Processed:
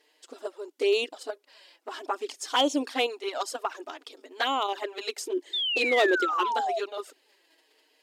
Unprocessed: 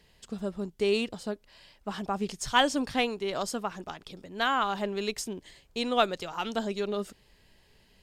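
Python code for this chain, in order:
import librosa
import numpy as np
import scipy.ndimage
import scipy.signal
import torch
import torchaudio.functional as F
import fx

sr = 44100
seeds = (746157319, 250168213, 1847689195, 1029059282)

p1 = fx.peak_eq(x, sr, hz=360.0, db=12.5, octaves=0.52, at=(5.15, 6.55))
p2 = fx.level_steps(p1, sr, step_db=15)
p3 = p1 + (p2 * librosa.db_to_amplitude(0.5))
p4 = fx.env_flanger(p3, sr, rest_ms=6.8, full_db=-18.5)
p5 = fx.spec_paint(p4, sr, seeds[0], shape='fall', start_s=5.53, length_s=1.26, low_hz=640.0, high_hz=3700.0, level_db=-28.0)
p6 = fx.clip_asym(p5, sr, top_db=-16.0, bottom_db=-14.0)
y = fx.brickwall_highpass(p6, sr, low_hz=260.0)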